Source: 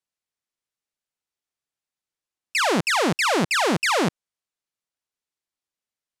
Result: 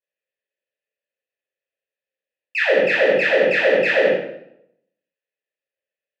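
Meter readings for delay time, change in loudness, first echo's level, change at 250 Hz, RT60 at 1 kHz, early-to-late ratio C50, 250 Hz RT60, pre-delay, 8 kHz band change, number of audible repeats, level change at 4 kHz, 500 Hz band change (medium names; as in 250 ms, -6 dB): no echo, +4.0 dB, no echo, -4.5 dB, 0.65 s, 2.0 dB, 0.90 s, 10 ms, under -15 dB, no echo, -3.5 dB, +10.0 dB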